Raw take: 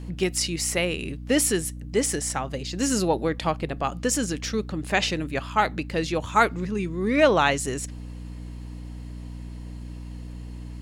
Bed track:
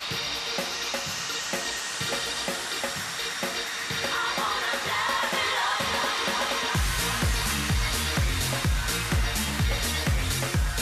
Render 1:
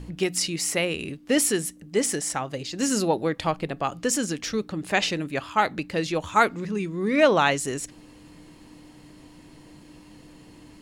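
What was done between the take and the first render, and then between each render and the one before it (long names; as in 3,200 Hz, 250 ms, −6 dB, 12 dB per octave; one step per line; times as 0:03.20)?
hum removal 60 Hz, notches 4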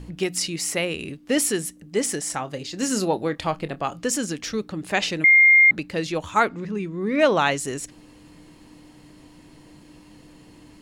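0:02.26–0:03.96: double-tracking delay 27 ms −14 dB
0:05.24–0:05.71: beep over 2,120 Hz −10 dBFS
0:06.39–0:07.19: high-shelf EQ 5,900 Hz → 3,500 Hz −10 dB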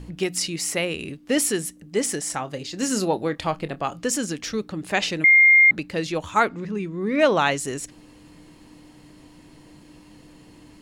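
no processing that can be heard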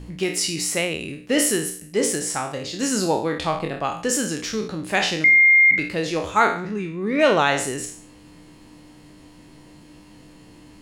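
peak hold with a decay on every bin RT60 0.50 s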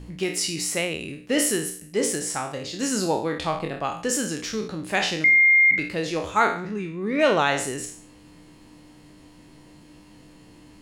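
level −2.5 dB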